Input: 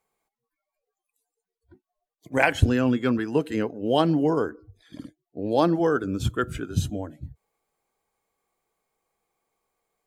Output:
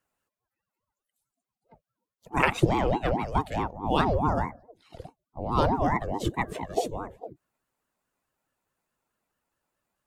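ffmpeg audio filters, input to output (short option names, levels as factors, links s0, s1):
-af "afreqshift=13,aeval=exprs='val(0)*sin(2*PI*410*n/s+410*0.5/4.7*sin(2*PI*4.7*n/s))':c=same"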